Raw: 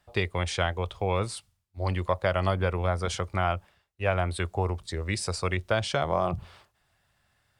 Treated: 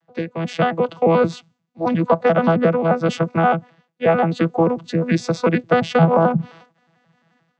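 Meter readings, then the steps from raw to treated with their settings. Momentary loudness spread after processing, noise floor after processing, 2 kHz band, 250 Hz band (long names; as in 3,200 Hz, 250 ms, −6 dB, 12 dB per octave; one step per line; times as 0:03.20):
9 LU, −72 dBFS, +6.5 dB, +16.5 dB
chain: vocoder with an arpeggio as carrier bare fifth, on E3, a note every 88 ms
high-shelf EQ 5,500 Hz −5.5 dB
automatic gain control gain up to 11.5 dB
level +2 dB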